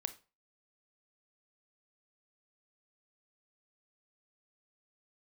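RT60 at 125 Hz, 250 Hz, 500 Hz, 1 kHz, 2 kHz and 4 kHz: 0.35 s, 0.30 s, 0.35 s, 0.35 s, 0.30 s, 0.30 s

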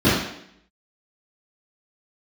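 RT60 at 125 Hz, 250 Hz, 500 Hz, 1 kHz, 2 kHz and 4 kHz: 0.60 s, 0.75 s, 0.75 s, 0.70 s, 0.75 s, 0.70 s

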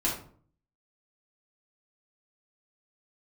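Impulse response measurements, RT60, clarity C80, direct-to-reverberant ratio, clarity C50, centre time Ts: 0.50 s, 10.0 dB, -7.0 dB, 5.0 dB, 33 ms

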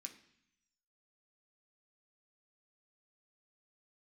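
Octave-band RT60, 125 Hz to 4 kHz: 1.0 s, 0.95 s, 0.60 s, 0.75 s, 0.90 s, 1.1 s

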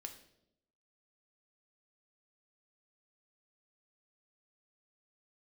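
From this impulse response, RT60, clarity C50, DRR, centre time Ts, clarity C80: 0.80 s, 10.5 dB, 4.0 dB, 13 ms, 13.5 dB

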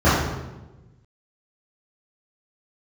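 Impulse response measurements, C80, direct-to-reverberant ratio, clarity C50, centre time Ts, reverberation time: 3.0 dB, -14.5 dB, -0.5 dB, 77 ms, 1.1 s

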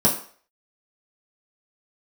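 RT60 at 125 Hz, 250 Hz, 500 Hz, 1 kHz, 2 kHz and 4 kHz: 0.30 s, 0.40 s, 0.45 s, 0.50 s, 0.45 s, 0.45 s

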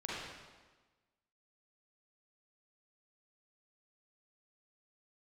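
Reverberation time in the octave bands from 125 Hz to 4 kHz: 1.3 s, 1.4 s, 1.3 s, 1.3 s, 1.2 s, 1.1 s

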